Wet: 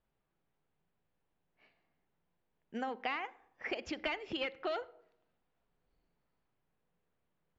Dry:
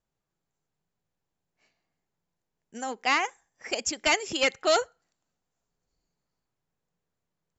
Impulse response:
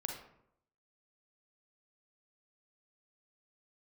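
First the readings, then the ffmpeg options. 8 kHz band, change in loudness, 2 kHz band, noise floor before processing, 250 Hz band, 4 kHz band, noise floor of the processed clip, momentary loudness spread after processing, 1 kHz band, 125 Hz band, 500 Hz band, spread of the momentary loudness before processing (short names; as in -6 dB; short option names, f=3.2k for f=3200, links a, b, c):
n/a, -13.0 dB, -12.0 dB, -85 dBFS, -6.0 dB, -14.0 dB, -82 dBFS, 9 LU, -11.5 dB, -5.5 dB, -11.5 dB, 13 LU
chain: -filter_complex "[0:a]lowpass=f=3.4k:w=0.5412,lowpass=f=3.4k:w=1.3066,equalizer=f=120:t=o:w=1.4:g=-4,acompressor=threshold=-37dB:ratio=10,asplit=2[a][b];[1:a]atrim=start_sample=2205,lowshelf=f=470:g=9.5[c];[b][c]afir=irnorm=-1:irlink=0,volume=-16dB[d];[a][d]amix=inputs=2:normalize=0,volume=1dB"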